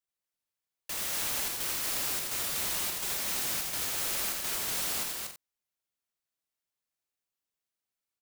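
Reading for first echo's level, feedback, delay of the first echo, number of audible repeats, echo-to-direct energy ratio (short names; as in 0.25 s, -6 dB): -4.5 dB, no steady repeat, 83 ms, 4, 0.0 dB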